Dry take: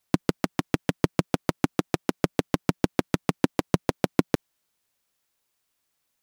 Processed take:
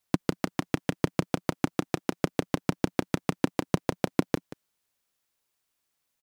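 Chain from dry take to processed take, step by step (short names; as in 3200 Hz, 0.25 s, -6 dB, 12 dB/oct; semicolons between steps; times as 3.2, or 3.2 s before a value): echo 0.182 s -17.5 dB; gain -3 dB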